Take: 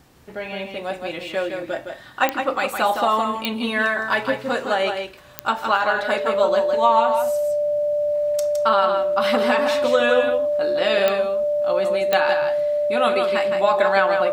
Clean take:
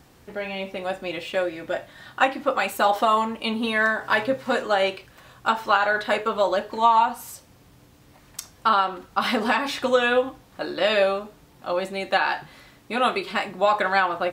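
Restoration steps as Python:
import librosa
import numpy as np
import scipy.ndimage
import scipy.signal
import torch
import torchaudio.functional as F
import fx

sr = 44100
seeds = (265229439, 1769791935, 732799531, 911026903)

y = fx.fix_declick_ar(x, sr, threshold=10.0)
y = fx.notch(y, sr, hz=590.0, q=30.0)
y = fx.fix_echo_inverse(y, sr, delay_ms=163, level_db=-6.0)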